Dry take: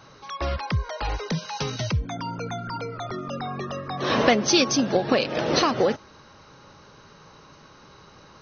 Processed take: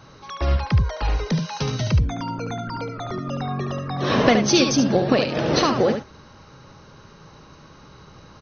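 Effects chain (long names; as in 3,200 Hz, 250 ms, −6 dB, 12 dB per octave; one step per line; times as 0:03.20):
low-shelf EQ 240 Hz +8 dB
single-tap delay 72 ms −7 dB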